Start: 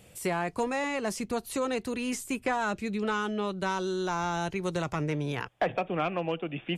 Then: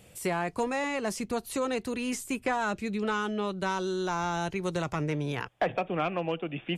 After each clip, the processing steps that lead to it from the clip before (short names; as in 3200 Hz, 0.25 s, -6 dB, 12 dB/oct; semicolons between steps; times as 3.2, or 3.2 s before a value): nothing audible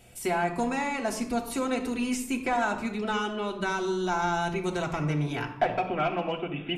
reverb RT60 0.80 s, pre-delay 3 ms, DRR -1.5 dB; gain -2 dB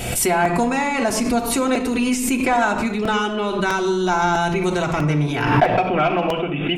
crackling interface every 0.65 s, samples 128, repeat, from 0.45; backwards sustainer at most 44 dB/s; gain +8.5 dB